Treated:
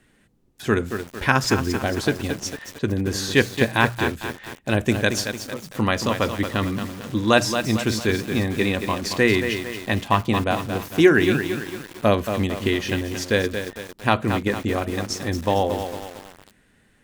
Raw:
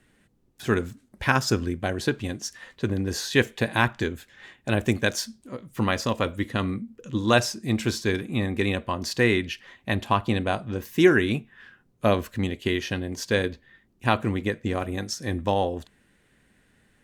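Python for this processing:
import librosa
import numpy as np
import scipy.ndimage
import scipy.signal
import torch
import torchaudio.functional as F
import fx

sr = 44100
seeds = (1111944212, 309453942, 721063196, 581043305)

y = fx.hum_notches(x, sr, base_hz=60, count=3)
y = fx.echo_crushed(y, sr, ms=226, feedback_pct=55, bits=6, wet_db=-7)
y = F.gain(torch.from_numpy(y), 3.0).numpy()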